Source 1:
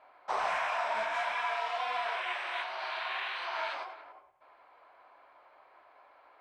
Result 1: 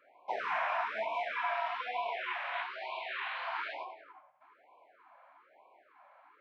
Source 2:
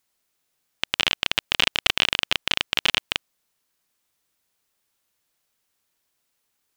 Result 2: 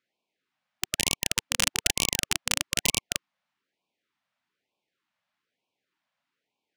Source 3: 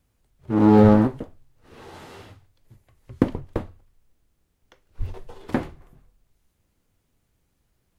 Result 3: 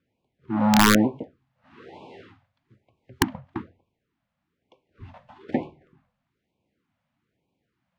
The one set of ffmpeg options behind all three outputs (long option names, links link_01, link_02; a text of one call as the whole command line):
ffmpeg -i in.wav -af "highpass=170,lowpass=2700,aeval=exprs='(mod(2.11*val(0)+1,2)-1)/2.11':channel_layout=same,afftfilt=real='re*(1-between(b*sr/1024,340*pow(1600/340,0.5+0.5*sin(2*PI*1.1*pts/sr))/1.41,340*pow(1600/340,0.5+0.5*sin(2*PI*1.1*pts/sr))*1.41))':imag='im*(1-between(b*sr/1024,340*pow(1600/340,0.5+0.5*sin(2*PI*1.1*pts/sr))/1.41,340*pow(1600/340,0.5+0.5*sin(2*PI*1.1*pts/sr))*1.41))':win_size=1024:overlap=0.75" out.wav